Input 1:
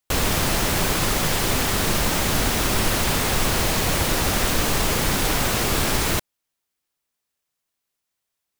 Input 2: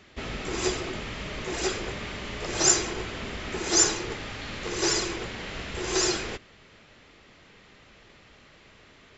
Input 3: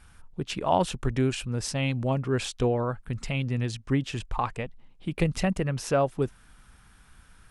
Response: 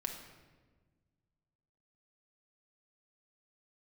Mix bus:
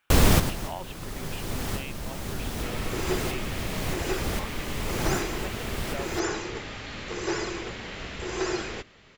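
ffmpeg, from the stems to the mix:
-filter_complex "[0:a]lowshelf=frequency=480:gain=8,volume=-1.5dB[link_01];[1:a]acrossover=split=2800[link_02][link_03];[link_03]acompressor=threshold=-39dB:ratio=4:attack=1:release=60[link_04];[link_02][link_04]amix=inputs=2:normalize=0,adelay=2450,volume=-1dB[link_05];[2:a]highpass=420,lowpass=frequency=2900:width_type=q:width=2.3,volume=-14dB,asplit=2[link_06][link_07];[link_07]apad=whole_len=379169[link_08];[link_01][link_08]sidechaincompress=threshold=-55dB:ratio=5:attack=9.5:release=893[link_09];[link_09][link_05][link_06]amix=inputs=3:normalize=0"

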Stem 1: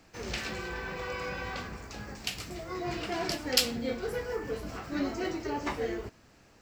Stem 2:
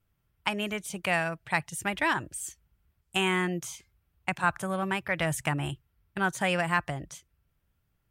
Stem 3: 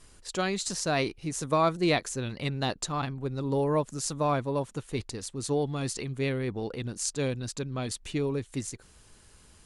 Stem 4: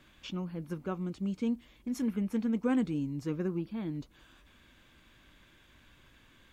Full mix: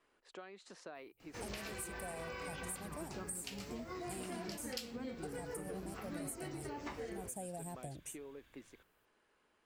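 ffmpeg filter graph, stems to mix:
ffmpeg -i stem1.wav -i stem2.wav -i stem3.wav -i stem4.wav -filter_complex "[0:a]adelay=1200,volume=-4.5dB[link_01];[1:a]firequalizer=gain_entry='entry(770,0);entry(1200,-29);entry(8300,14)':delay=0.05:min_phase=1,adelay=950,volume=-10.5dB[link_02];[2:a]acrossover=split=270 2900:gain=0.0631 1 0.1[link_03][link_04][link_05];[link_03][link_04][link_05]amix=inputs=3:normalize=0,acompressor=threshold=-36dB:ratio=12,volume=-10.5dB[link_06];[3:a]equalizer=frequency=220:width_type=o:width=0.77:gain=-3.5,adelay=2300,volume=-7.5dB[link_07];[link_01][link_02][link_06][link_07]amix=inputs=4:normalize=0,acompressor=threshold=-41dB:ratio=6" out.wav

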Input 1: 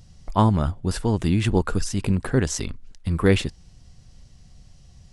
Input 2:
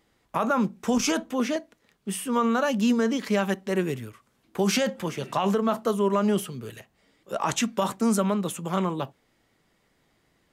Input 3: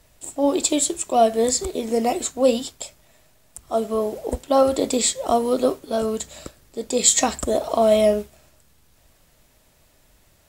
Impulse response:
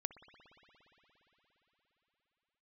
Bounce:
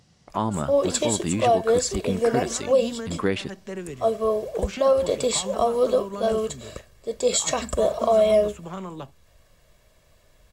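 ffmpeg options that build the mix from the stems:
-filter_complex "[0:a]highpass=130,lowshelf=frequency=190:gain=-6.5,volume=-0.5dB,asplit=2[link_01][link_02];[1:a]equalizer=frequency=7200:width_type=o:width=0.39:gain=13,acrossover=split=300|4200[link_03][link_04][link_05];[link_03]acompressor=threshold=-32dB:ratio=4[link_06];[link_04]acompressor=threshold=-29dB:ratio=4[link_07];[link_05]acompressor=threshold=-45dB:ratio=4[link_08];[link_06][link_07][link_08]amix=inputs=3:normalize=0,volume=-4.5dB[link_09];[2:a]aecho=1:1:1.8:0.64,adelay=300,volume=-2dB[link_10];[link_02]apad=whole_len=464279[link_11];[link_09][link_11]sidechaincompress=threshold=-31dB:ratio=8:attack=12:release=131[link_12];[link_01][link_12][link_10]amix=inputs=3:normalize=0,highshelf=frequency=7600:gain=-9.5,alimiter=limit=-10.5dB:level=0:latency=1:release=173"

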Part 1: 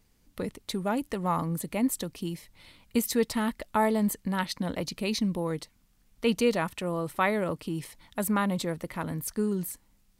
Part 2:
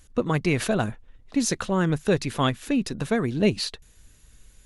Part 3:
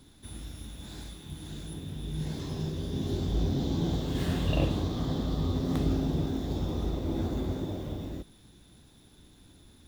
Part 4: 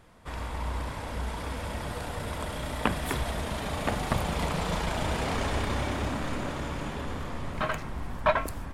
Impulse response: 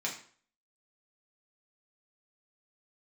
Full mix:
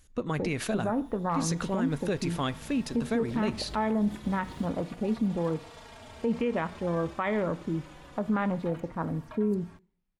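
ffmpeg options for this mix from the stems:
-filter_complex "[0:a]lowpass=2600,afwtdn=0.0158,volume=0.5dB,asplit=2[link_01][link_02];[link_02]volume=-13dB[link_03];[1:a]volume=-6dB,asplit=3[link_04][link_05][link_06];[link_05]volume=-19.5dB[link_07];[2:a]adelay=350,volume=-15.5dB[link_08];[3:a]highshelf=frequency=4400:gain=7.5,acrossover=split=81|300|7200[link_09][link_10][link_11][link_12];[link_09]acompressor=threshold=-43dB:ratio=4[link_13];[link_10]acompressor=threshold=-41dB:ratio=4[link_14];[link_11]acompressor=threshold=-34dB:ratio=4[link_15];[link_12]acompressor=threshold=-59dB:ratio=4[link_16];[link_13][link_14][link_15][link_16]amix=inputs=4:normalize=0,asplit=2[link_17][link_18];[link_18]adelay=3.6,afreqshift=-0.28[link_19];[link_17][link_19]amix=inputs=2:normalize=1,adelay=1050,volume=-10dB[link_20];[link_06]apad=whole_len=450880[link_21];[link_08][link_21]sidechaingate=range=-33dB:threshold=-58dB:ratio=16:detection=peak[link_22];[4:a]atrim=start_sample=2205[link_23];[link_03][link_07]amix=inputs=2:normalize=0[link_24];[link_24][link_23]afir=irnorm=-1:irlink=0[link_25];[link_01][link_04][link_22][link_20][link_25]amix=inputs=5:normalize=0,alimiter=limit=-19.5dB:level=0:latency=1:release=82"

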